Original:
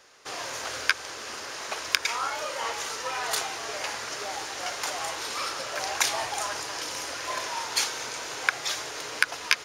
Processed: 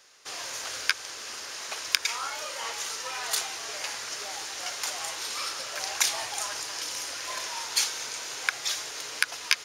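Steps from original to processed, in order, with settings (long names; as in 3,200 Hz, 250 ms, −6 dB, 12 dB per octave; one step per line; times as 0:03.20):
high-shelf EQ 2,000 Hz +10 dB
level −7.5 dB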